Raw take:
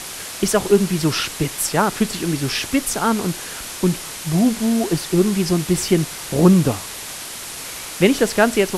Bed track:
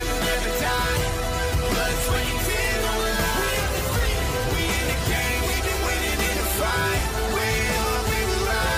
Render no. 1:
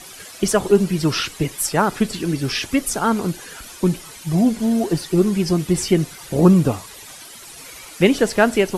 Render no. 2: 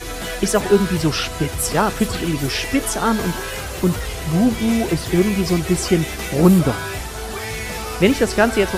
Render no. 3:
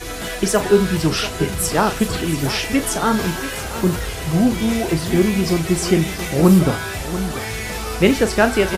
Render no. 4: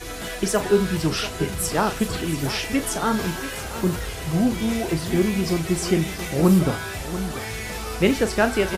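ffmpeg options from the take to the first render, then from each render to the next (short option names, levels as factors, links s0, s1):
-af "afftdn=nr=12:nf=-32"
-filter_complex "[1:a]volume=0.596[s0];[0:a][s0]amix=inputs=2:normalize=0"
-filter_complex "[0:a]asplit=2[s0][s1];[s1]adelay=37,volume=0.299[s2];[s0][s2]amix=inputs=2:normalize=0,aecho=1:1:688:0.224"
-af "volume=0.596"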